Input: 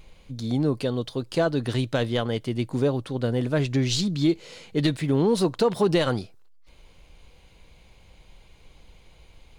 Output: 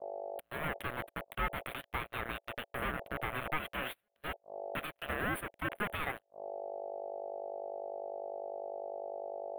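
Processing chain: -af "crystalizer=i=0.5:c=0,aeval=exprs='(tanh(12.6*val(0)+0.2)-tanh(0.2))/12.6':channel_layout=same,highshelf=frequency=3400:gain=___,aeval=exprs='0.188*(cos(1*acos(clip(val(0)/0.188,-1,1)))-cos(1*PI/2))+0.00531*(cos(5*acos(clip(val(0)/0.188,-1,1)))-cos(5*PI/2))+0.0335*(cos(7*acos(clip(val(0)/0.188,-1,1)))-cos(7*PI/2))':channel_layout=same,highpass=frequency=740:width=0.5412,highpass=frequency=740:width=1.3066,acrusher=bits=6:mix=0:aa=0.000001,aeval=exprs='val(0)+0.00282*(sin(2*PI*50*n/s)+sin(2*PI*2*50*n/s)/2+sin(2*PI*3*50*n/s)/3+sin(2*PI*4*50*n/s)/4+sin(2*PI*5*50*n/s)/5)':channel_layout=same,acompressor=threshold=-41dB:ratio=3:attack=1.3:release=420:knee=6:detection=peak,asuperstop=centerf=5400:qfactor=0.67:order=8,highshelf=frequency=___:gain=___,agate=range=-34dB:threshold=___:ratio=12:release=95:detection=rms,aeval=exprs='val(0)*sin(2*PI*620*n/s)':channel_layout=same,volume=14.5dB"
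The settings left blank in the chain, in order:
6, 6800, -8.5, -52dB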